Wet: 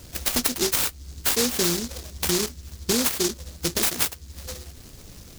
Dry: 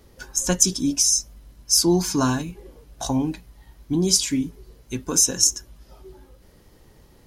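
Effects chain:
wrong playback speed 33 rpm record played at 45 rpm
downward compressor 3 to 1, threshold −31 dBFS, peak gain reduction 14 dB
short delay modulated by noise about 5,300 Hz, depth 0.37 ms
level +8 dB

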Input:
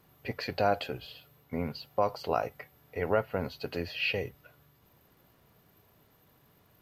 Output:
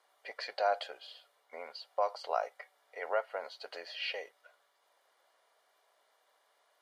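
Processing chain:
elliptic band-pass filter 590–9,900 Hz, stop band 80 dB
notch filter 2,600 Hz, Q 6.2
level −2 dB

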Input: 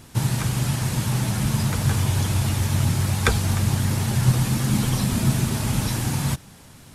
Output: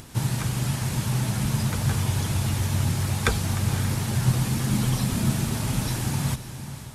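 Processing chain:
on a send: feedback delay with all-pass diffusion 518 ms, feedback 40%, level −11.5 dB
on the sum: upward compression, threshold −35 dBFS
level −3 dB

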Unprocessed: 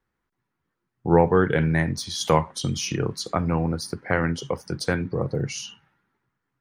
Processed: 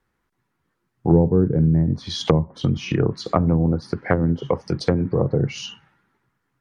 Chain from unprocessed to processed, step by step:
treble cut that deepens with the level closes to 310 Hz, closed at −18 dBFS
0:04.57–0:05.00: notch filter 1,500 Hz, Q 7
level +6 dB

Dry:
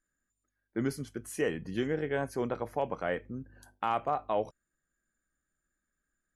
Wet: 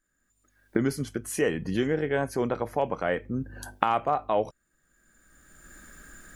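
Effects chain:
camcorder AGC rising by 22 dB per second
level +5 dB

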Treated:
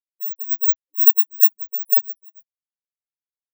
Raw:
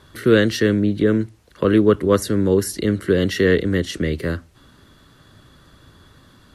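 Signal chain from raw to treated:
samples in bit-reversed order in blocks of 32 samples
multiband delay without the direct sound lows, highs 120 ms, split 1,100 Hz
in parallel at −1 dB: downward compressor 4 to 1, threshold −32 dBFS, peak gain reduction 18 dB
on the sum: brickwall limiter −8.5 dBFS, peak gain reduction 7.5 dB
automatic gain control gain up to 7.5 dB
noise reduction from a noise print of the clip's start 12 dB
on a send at −2.5 dB: convolution reverb RT60 0.25 s, pre-delay 3 ms
on the sum: phase-vocoder stretch with locked phases 0.54×
Bessel high-pass filter 240 Hz
spectral tilt +4.5 dB per octave
every bin expanded away from the loudest bin 4 to 1
level −14 dB

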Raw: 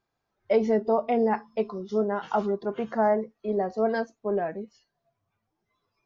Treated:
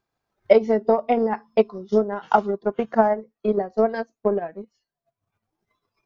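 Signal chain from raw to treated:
transient designer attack +11 dB, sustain −4 dB, from 0:02.56 sustain −10 dB

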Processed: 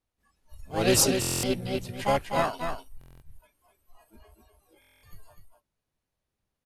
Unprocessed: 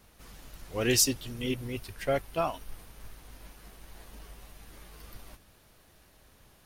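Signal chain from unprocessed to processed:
noise reduction from a noise print of the clip's start 29 dB
pitch-shifted copies added −5 semitones −17 dB, +7 semitones −2 dB
in parallel at −11 dB: decimation without filtering 23×
on the sum: linear-phase brick-wall low-pass 13,000 Hz
on a send: single-tap delay 249 ms −6 dB
on the sum: buffer that repeats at 0:01.20/0:02.99/0:04.80, samples 1,024, times 9

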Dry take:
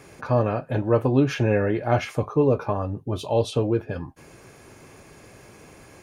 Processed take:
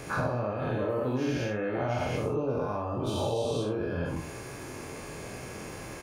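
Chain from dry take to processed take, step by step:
every bin's largest magnitude spread in time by 240 ms
downward compressor 12 to 1, threshold −28 dBFS, peak gain reduction 18 dB
on a send: ambience of single reflections 24 ms −6.5 dB, 66 ms −6.5 dB

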